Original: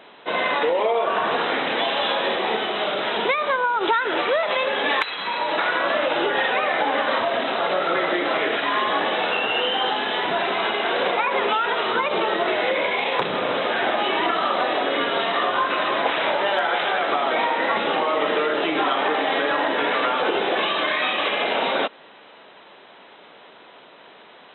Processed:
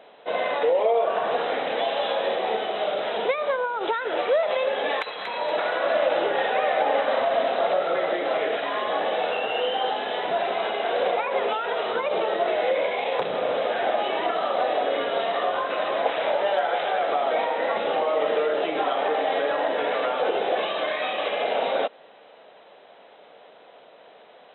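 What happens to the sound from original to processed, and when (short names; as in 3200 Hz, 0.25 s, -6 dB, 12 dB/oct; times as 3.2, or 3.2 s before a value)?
4.97–7.74 split-band echo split 1200 Hz, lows 91 ms, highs 0.236 s, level -6.5 dB
whole clip: band shelf 590 Hz +8.5 dB 1 oct; gain -7.5 dB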